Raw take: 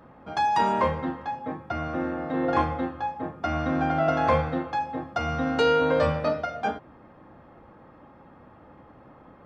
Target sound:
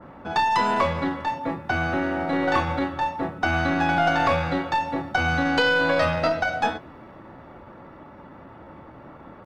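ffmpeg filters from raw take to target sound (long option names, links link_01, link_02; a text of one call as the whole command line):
ffmpeg -i in.wav -filter_complex "[0:a]acrossover=split=820|3900[link_01][link_02][link_03];[link_01]acompressor=threshold=-29dB:ratio=4[link_04];[link_02]acompressor=threshold=-28dB:ratio=4[link_05];[link_03]acompressor=threshold=-55dB:ratio=4[link_06];[link_04][link_05][link_06]amix=inputs=3:normalize=0,asplit=2[link_07][link_08];[link_08]adelay=27,volume=-12.5dB[link_09];[link_07][link_09]amix=inputs=2:normalize=0,asplit=2[link_10][link_11];[link_11]aeval=exprs='clip(val(0),-1,0.015)':channel_layout=same,volume=-10dB[link_12];[link_10][link_12]amix=inputs=2:normalize=0,asetrate=46722,aresample=44100,atempo=0.943874,adynamicequalizer=threshold=0.00891:dfrequency=2400:dqfactor=0.7:tfrequency=2400:tqfactor=0.7:attack=5:release=100:ratio=0.375:range=3:mode=boostabove:tftype=highshelf,volume=4dB" out.wav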